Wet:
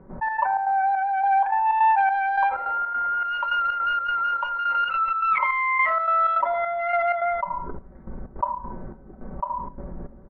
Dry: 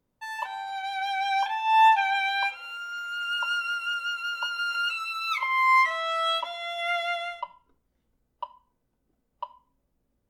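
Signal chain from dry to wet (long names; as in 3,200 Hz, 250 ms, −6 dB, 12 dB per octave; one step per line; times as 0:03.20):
adaptive Wiener filter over 15 samples
low-pass filter 1,900 Hz 24 dB per octave
comb filter 5.3 ms, depth 53%
gate pattern ".xx.xx.xxx.." 158 BPM −12 dB
envelope flattener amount 70%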